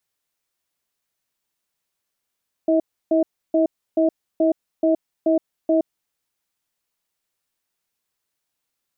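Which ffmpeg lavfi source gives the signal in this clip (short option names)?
-f lavfi -i "aevalsrc='0.141*(sin(2*PI*324*t)+sin(2*PI*640*t))*clip(min(mod(t,0.43),0.12-mod(t,0.43))/0.005,0,1)':d=3.25:s=44100"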